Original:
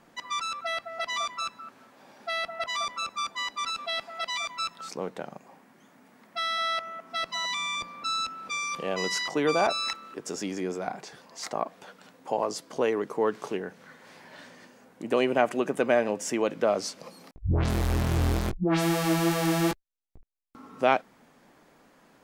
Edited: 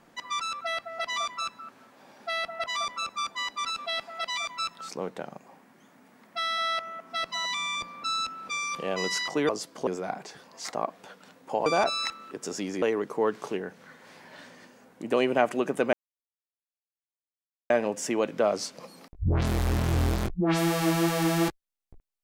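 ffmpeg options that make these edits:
-filter_complex "[0:a]asplit=6[a][b][c][d][e][f];[a]atrim=end=9.492[g];[b]atrim=start=12.438:end=12.822[h];[c]atrim=start=10.648:end=12.442[i];[d]atrim=start=9.488:end=10.652[j];[e]atrim=start=12.818:end=15.93,asetpts=PTS-STARTPTS,afade=t=out:st=3.108:d=0.004:c=hsin,apad=pad_dur=1.77[k];[f]atrim=start=15.93,asetpts=PTS-STARTPTS,afade=t=in:d=0.004:c=hsin[l];[g][h]acrossfade=d=0.004:c1=hsin:c2=hsin[m];[m][i]acrossfade=d=0.004:c1=hsin:c2=hsin[n];[n][j]acrossfade=d=0.004:c1=hsin:c2=hsin[o];[k][l]concat=n=2:v=0:a=1[p];[o][p]acrossfade=d=0.004:c1=hsin:c2=hsin"

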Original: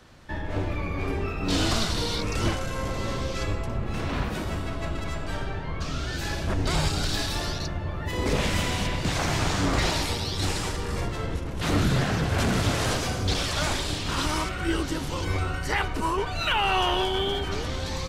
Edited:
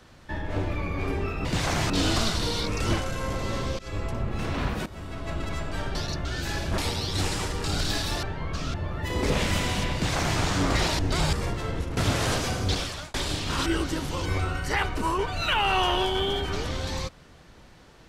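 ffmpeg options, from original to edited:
-filter_complex "[0:a]asplit=16[a][b][c][d][e][f][g][h][i][j][k][l][m][n][o][p];[a]atrim=end=1.452[q];[b]atrim=start=8.968:end=9.422[r];[c]atrim=start=1.448:end=3.34,asetpts=PTS-STARTPTS,afade=t=out:st=1.888:d=0.004:c=hsin:silence=0.0707946[s];[d]atrim=start=3.34:end=4.41,asetpts=PTS-STARTPTS,afade=t=in:d=0.26:silence=0.0707946,afade=t=out:st=1.066:d=0.004:c=hsin:silence=0.16788[t];[e]atrim=start=4.41:end=5.502,asetpts=PTS-STARTPTS,afade=t=in:d=0.55:silence=0.16788[u];[f]atrim=start=7.468:end=7.772[v];[g]atrim=start=6.008:end=6.542[w];[h]atrim=start=10.018:end=10.882[x];[i]atrim=start=6.878:end=7.472[y];[j]atrim=start=5.498:end=6.012[z];[k]atrim=start=7.768:end=10.022[aa];[l]atrim=start=6.538:end=6.882[ab];[m]atrim=start=10.878:end=11.522[ac];[n]atrim=start=12.558:end=13.73,asetpts=PTS-STARTPTS,afade=t=out:st=0.722:d=0.45[ad];[o]atrim=start=13.73:end=14.252,asetpts=PTS-STARTPTS,afade=t=in:d=0.004:c=hsin[ae];[p]atrim=start=14.648[af];[q][r]acrossfade=d=0.004:c1=hsin:c2=hsin[ag];[s][t][u]concat=n=3:v=0:a=1[ah];[ag][ah]acrossfade=d=0.004:c1=hsin:c2=hsin[ai];[ai][v]acrossfade=d=0.004:c1=hsin:c2=hsin[aj];[aj][w]acrossfade=d=0.004:c1=hsin:c2=hsin[ak];[ak][x]acrossfade=d=0.004:c1=hsin:c2=hsin[al];[al][y]acrossfade=d=0.004:c1=hsin:c2=hsin[am];[am][z]acrossfade=d=0.004:c1=hsin:c2=hsin[an];[an][aa]acrossfade=d=0.004:c1=hsin:c2=hsin[ao];[ao][ab]acrossfade=d=0.004:c1=hsin:c2=hsin[ap];[ap][ac]acrossfade=d=0.004:c1=hsin:c2=hsin[aq];[ad][ae]concat=n=2:v=0:a=1[ar];[aq][ar]acrossfade=d=0.004:c1=hsin:c2=hsin[as];[as][af]acrossfade=d=0.004:c1=hsin:c2=hsin"

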